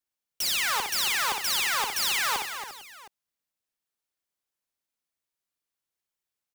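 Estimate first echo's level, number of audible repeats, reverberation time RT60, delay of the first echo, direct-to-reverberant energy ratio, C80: -5.5 dB, 6, no reverb, 60 ms, no reverb, no reverb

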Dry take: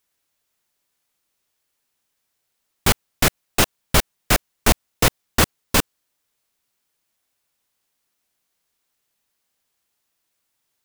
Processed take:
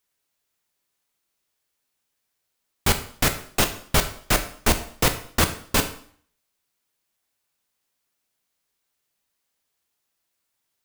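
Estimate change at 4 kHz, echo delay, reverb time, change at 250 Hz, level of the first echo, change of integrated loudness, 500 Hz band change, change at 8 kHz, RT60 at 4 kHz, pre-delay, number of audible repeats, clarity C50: -3.0 dB, no echo, 0.55 s, -3.0 dB, no echo, -3.0 dB, -2.5 dB, -3.0 dB, 0.55 s, 6 ms, no echo, 11.5 dB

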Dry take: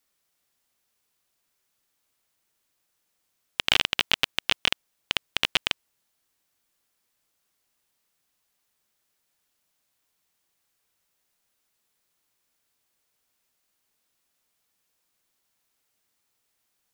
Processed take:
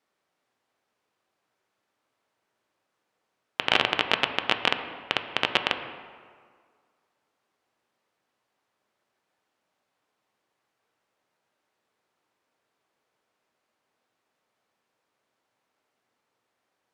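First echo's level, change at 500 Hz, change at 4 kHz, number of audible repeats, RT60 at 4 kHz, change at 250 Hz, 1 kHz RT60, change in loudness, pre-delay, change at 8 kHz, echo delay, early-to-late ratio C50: no echo, +8.0 dB, -2.0 dB, no echo, 1.2 s, +5.5 dB, 1.9 s, 0.0 dB, 4 ms, -9.0 dB, no echo, 9.0 dB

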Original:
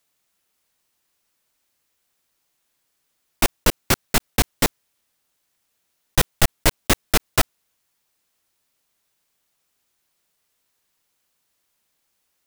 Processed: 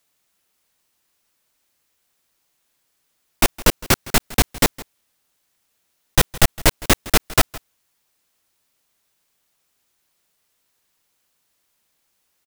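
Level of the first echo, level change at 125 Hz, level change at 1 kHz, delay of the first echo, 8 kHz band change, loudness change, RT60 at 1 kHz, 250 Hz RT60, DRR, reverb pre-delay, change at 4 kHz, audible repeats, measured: -20.0 dB, +2.5 dB, +2.5 dB, 162 ms, +2.5 dB, +2.5 dB, no reverb, no reverb, no reverb, no reverb, +2.5 dB, 1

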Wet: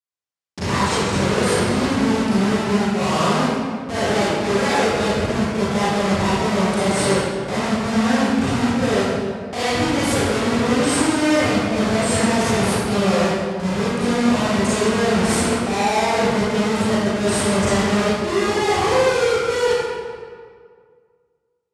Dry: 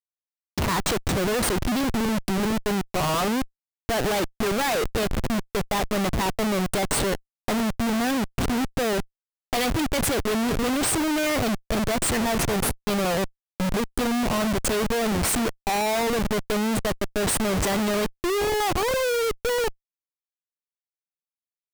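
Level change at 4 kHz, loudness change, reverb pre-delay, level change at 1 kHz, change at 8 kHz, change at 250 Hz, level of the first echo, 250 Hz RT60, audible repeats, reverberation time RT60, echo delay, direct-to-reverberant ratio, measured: +4.5 dB, +5.5 dB, 31 ms, +6.0 dB, +2.0 dB, +6.5 dB, no echo, 2.1 s, no echo, 2.0 s, no echo, -11.5 dB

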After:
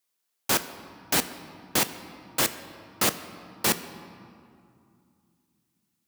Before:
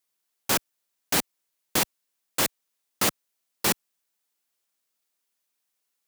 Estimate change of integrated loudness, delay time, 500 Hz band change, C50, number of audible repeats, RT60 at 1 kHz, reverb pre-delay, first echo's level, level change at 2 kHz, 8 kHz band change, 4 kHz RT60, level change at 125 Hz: 0.0 dB, no echo, +0.5 dB, 12.5 dB, no echo, 2.4 s, 8 ms, no echo, +0.5 dB, 0.0 dB, 1.5 s, +0.5 dB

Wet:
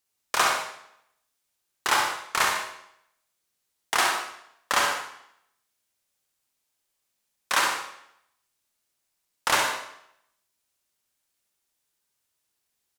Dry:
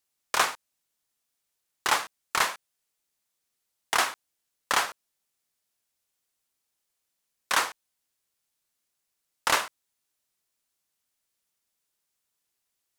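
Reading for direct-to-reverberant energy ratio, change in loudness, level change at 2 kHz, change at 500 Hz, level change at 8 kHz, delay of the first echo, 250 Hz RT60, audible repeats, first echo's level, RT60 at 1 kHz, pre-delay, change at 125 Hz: 0.0 dB, +2.0 dB, +3.0 dB, +3.0 dB, +2.5 dB, 68 ms, 0.75 s, 2, -6.0 dB, 0.75 s, 36 ms, +3.5 dB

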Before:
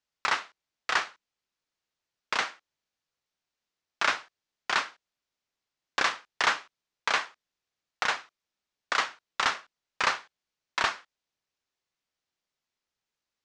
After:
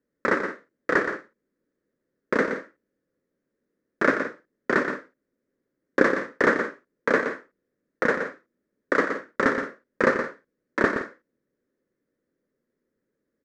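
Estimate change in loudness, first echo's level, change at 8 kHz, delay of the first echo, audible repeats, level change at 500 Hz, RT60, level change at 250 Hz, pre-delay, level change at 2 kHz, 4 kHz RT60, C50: +4.0 dB, -8.0 dB, -9.0 dB, 121 ms, 2, +17.0 dB, no reverb, +22.5 dB, no reverb, +4.5 dB, no reverb, no reverb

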